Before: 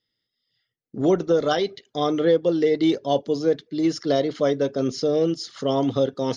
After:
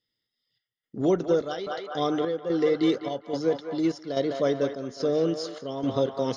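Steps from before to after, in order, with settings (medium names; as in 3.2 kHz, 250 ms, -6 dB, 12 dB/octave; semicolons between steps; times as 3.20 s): on a send: band-passed feedback delay 204 ms, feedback 78%, band-pass 1.2 kHz, level -6 dB; on the sum: square tremolo 1.2 Hz, depth 60%, duty 70%; trim -3.5 dB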